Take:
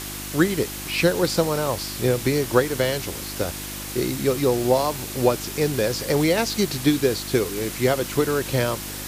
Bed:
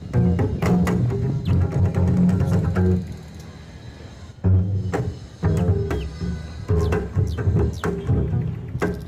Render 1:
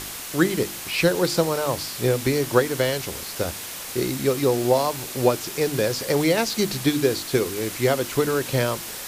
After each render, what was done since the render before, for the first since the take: de-hum 50 Hz, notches 7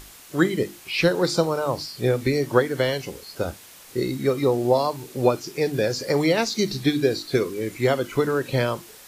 noise print and reduce 12 dB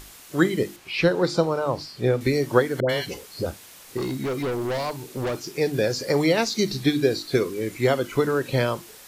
0.76–2.21 LPF 3400 Hz 6 dB/oct; 2.8–3.46 dispersion highs, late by 91 ms, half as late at 770 Hz; 3.97–5.58 overloaded stage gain 24 dB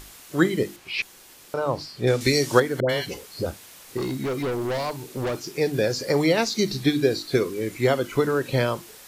1.02–1.54 room tone; 2.07–2.6 bell 6200 Hz +13 dB 2.3 oct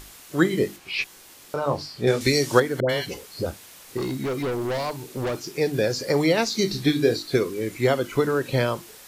0.49–2.21 doubler 21 ms -6 dB; 6.51–7.17 doubler 26 ms -8 dB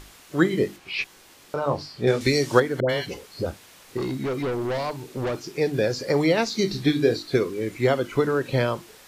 high shelf 6700 Hz -9 dB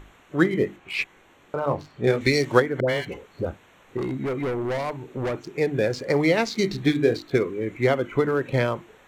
Wiener smoothing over 9 samples; dynamic EQ 2100 Hz, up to +5 dB, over -47 dBFS, Q 4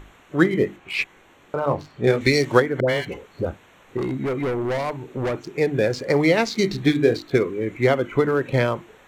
gain +2.5 dB; limiter -2 dBFS, peak gain reduction 1.5 dB

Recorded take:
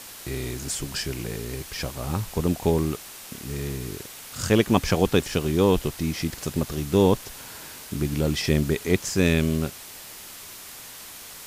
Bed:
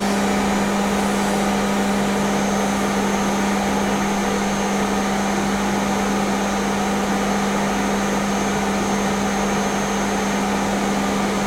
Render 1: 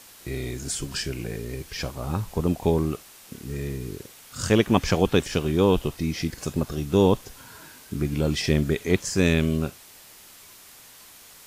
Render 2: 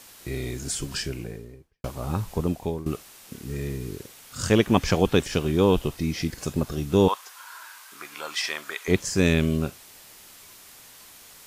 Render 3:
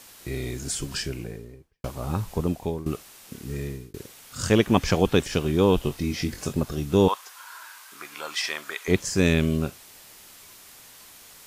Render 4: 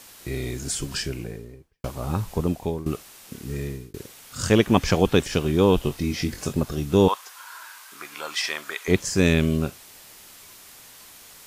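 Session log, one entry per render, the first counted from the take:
noise print and reduce 7 dB
0.93–1.84 studio fade out; 2.34–2.86 fade out, to -15 dB; 7.08–8.88 resonant high-pass 1100 Hz, resonance Q 2.3
3.51–3.94 fade out equal-power; 5.82–6.53 doubler 22 ms -7 dB
gain +1.5 dB

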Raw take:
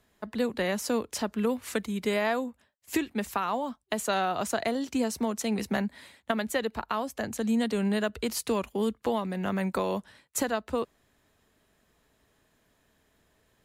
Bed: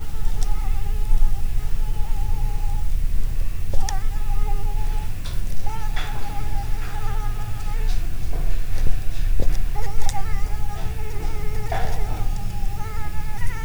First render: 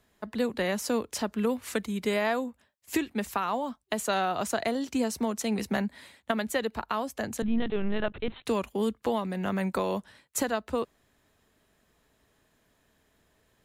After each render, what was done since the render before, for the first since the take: 7.42–8.46 LPC vocoder at 8 kHz pitch kept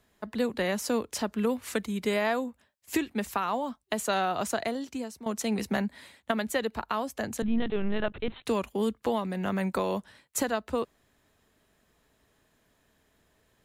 4.48–5.26 fade out, to -17 dB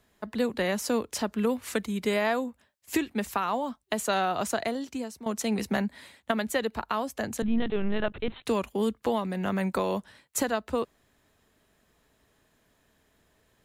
gain +1 dB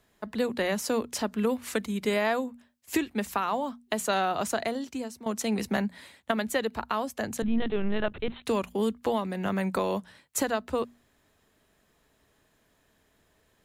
notches 60/120/180/240 Hz

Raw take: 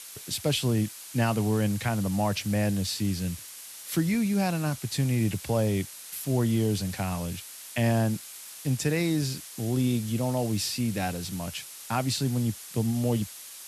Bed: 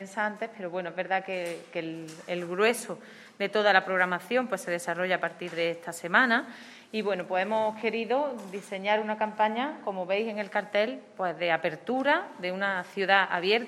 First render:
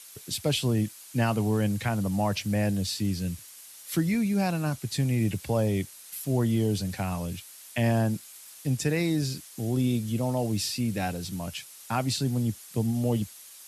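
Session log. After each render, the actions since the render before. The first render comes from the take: denoiser 6 dB, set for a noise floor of -44 dBFS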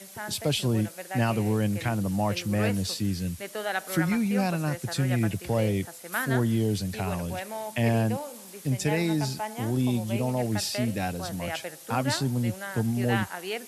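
add bed -8.5 dB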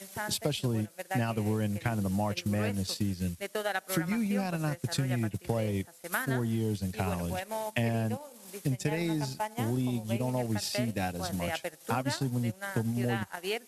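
transient shaper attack +3 dB, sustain -11 dB; compressor 4:1, threshold -27 dBFS, peak gain reduction 8.5 dB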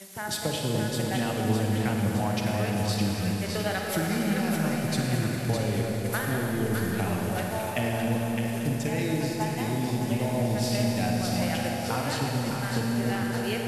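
split-band echo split 1000 Hz, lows 0.292 s, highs 0.611 s, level -5 dB; Schroeder reverb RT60 3.6 s, DRR 0 dB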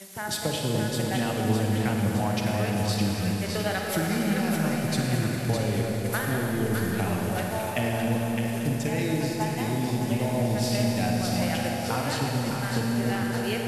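gain +1 dB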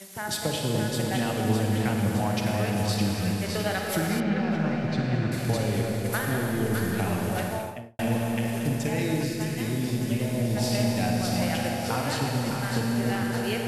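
4.2–5.32 air absorption 210 m; 7.45–7.99 studio fade out; 9.23–10.57 bell 840 Hz -13 dB 0.67 oct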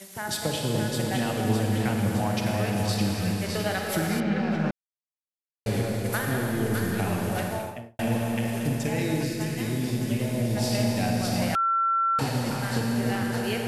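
4.71–5.66 mute; 11.55–12.19 bleep 1350 Hz -20.5 dBFS

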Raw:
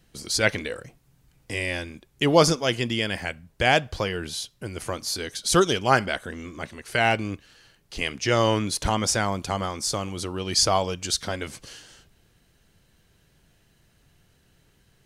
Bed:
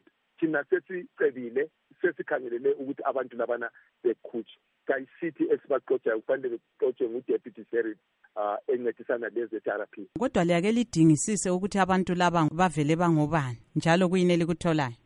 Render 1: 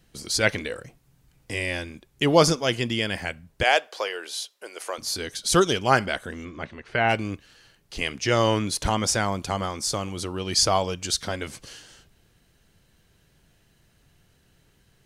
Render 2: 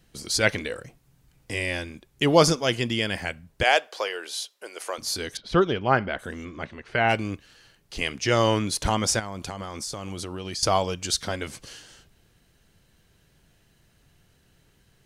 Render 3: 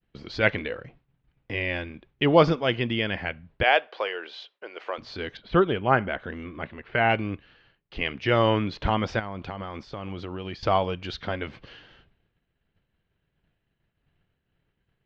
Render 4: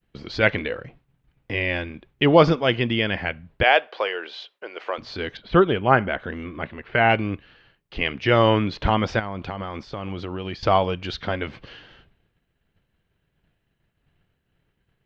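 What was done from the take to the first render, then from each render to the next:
3.63–4.98 HPF 430 Hz 24 dB/oct; 6.44–7.08 LPF 4500 Hz -> 2200 Hz
5.37–6.19 air absorption 360 m; 9.19–10.63 compressor 10:1, threshold -29 dBFS
inverse Chebyshev low-pass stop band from 9500 Hz, stop band 60 dB; expander -52 dBFS
gain +4 dB; limiter -3 dBFS, peak gain reduction 2 dB

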